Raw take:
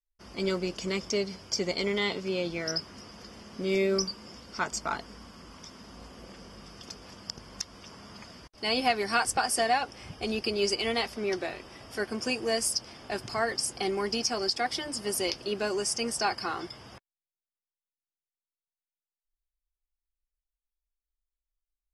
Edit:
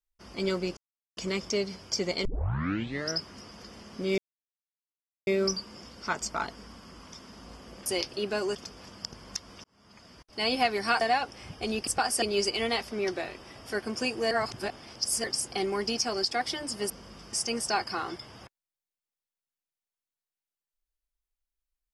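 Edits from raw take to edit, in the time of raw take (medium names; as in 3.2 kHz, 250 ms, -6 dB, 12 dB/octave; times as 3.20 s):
0.77 s: insert silence 0.40 s
1.85 s: tape start 0.85 s
3.78 s: insert silence 1.09 s
6.37–6.80 s: swap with 15.15–15.84 s
7.89–8.67 s: fade in
9.26–9.61 s: move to 10.47 s
12.56–13.49 s: reverse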